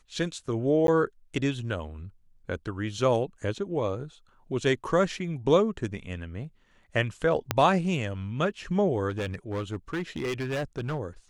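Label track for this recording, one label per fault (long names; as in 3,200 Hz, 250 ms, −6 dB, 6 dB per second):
0.870000	0.880000	drop-out 12 ms
7.510000	7.510000	click −8 dBFS
9.090000	10.990000	clipping −26.5 dBFS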